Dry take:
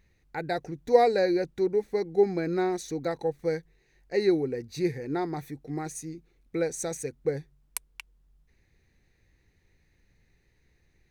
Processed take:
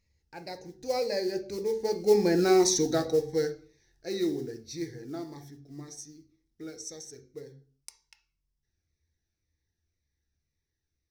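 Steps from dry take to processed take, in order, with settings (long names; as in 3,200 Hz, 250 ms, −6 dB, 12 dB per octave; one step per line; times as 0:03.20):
source passing by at 0:02.63, 18 m/s, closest 6.7 metres
parametric band 65 Hz −4.5 dB 2.1 octaves
noise that follows the level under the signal 28 dB
parametric band 5,400 Hz +13.5 dB 0.57 octaves
on a send at −6 dB: convolution reverb RT60 0.45 s, pre-delay 3 ms
on the sum: phaser whose notches keep moving one way falling 1.9 Hz
level +7 dB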